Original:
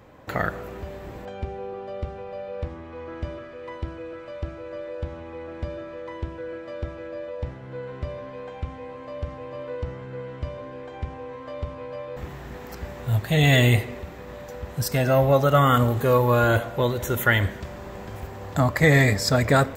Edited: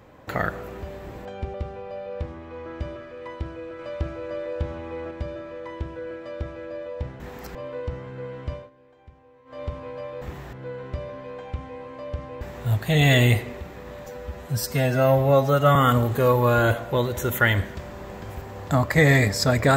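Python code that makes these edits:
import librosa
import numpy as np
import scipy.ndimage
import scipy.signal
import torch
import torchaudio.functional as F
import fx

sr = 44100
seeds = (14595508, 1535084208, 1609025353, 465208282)

y = fx.edit(x, sr, fx.cut(start_s=1.54, length_s=0.42),
    fx.clip_gain(start_s=4.21, length_s=1.32, db=3.5),
    fx.swap(start_s=7.62, length_s=1.88, other_s=12.48, other_length_s=0.35),
    fx.fade_down_up(start_s=10.49, length_s=1.07, db=-17.5, fade_s=0.16),
    fx.stretch_span(start_s=14.48, length_s=1.13, factor=1.5), tone=tone)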